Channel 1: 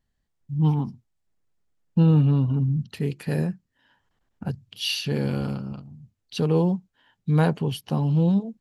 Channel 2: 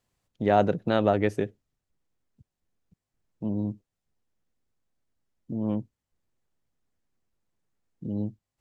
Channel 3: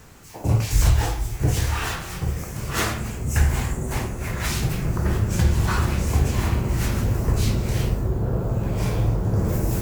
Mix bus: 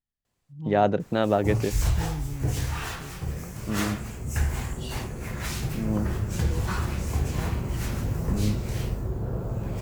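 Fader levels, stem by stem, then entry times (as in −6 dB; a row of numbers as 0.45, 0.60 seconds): −16.5, 0.0, −6.5 decibels; 0.00, 0.25, 1.00 seconds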